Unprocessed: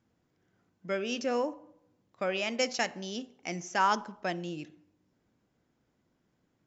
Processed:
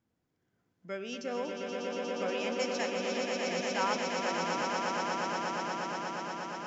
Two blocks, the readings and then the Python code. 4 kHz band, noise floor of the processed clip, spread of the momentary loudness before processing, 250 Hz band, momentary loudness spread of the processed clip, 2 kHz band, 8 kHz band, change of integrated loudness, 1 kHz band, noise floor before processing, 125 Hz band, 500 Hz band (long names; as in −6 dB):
+0.5 dB, −80 dBFS, 13 LU, +0.5 dB, 6 LU, +1.0 dB, can't be measured, −1.5 dB, +0.5 dB, −76 dBFS, −1.0 dB, +1.5 dB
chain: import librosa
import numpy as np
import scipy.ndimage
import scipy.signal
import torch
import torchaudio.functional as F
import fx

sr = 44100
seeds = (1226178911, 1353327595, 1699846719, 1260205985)

y = fx.echo_swell(x, sr, ms=119, loudest=8, wet_db=-5.0)
y = F.gain(torch.from_numpy(y), -6.5).numpy()